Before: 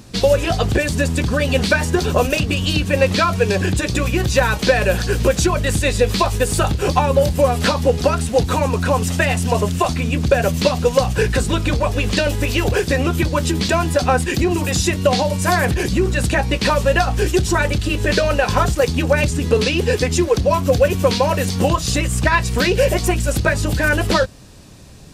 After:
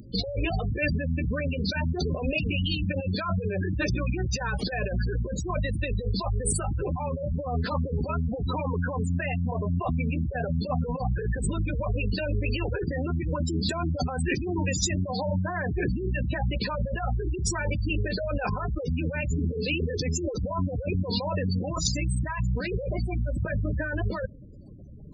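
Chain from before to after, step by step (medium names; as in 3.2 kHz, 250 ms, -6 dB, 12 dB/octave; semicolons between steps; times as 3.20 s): compressor with a negative ratio -21 dBFS, ratio -1; spectral gate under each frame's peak -15 dB strong; treble shelf 4.9 kHz +9.5 dB, from 22.22 s -4 dB; trim -6.5 dB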